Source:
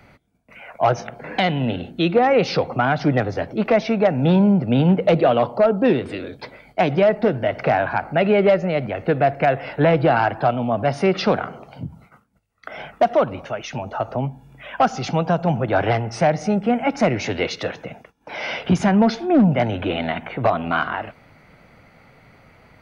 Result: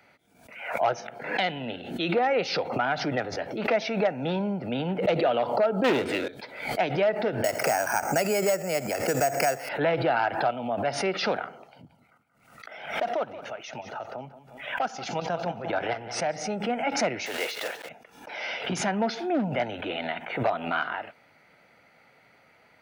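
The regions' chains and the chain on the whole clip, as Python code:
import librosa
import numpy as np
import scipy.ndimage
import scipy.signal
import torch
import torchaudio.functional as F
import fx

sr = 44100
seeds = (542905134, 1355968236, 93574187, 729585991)

y = fx.chain(x, sr, fx.high_shelf(hz=5300.0, db=-6.5),
    fx.leveller(passes=3), at=(5.84, 6.28))
y = fx.chain(y, sr, fx.resample_bad(factor=6, down='filtered', up='hold'),
    fx.band_squash(depth_pct=70), at=(7.44, 9.69))
y = fx.chain(y, sr, fx.level_steps(step_db=9),
    fx.echo_warbled(ms=180, feedback_pct=31, rate_hz=2.8, cents=68, wet_db=-13.5), at=(11.68, 16.36))
y = fx.chain(y, sr, fx.block_float(bits=3),
    fx.bass_treble(bass_db=-15, treble_db=-6),
    fx.sustainer(db_per_s=120.0), at=(17.26, 17.89))
y = fx.highpass(y, sr, hz=570.0, slope=6)
y = fx.notch(y, sr, hz=1100.0, q=7.4)
y = fx.pre_swell(y, sr, db_per_s=80.0)
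y = y * 10.0 ** (-5.0 / 20.0)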